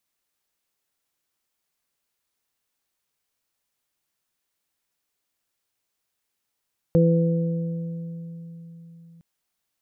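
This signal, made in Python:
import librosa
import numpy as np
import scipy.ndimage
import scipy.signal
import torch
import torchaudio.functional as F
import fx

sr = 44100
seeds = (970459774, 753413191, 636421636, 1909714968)

y = fx.additive(sr, length_s=2.26, hz=167.0, level_db=-15, upper_db=(-8.5, -2.5), decay_s=4.23, upper_decays_s=(2.12, 2.36))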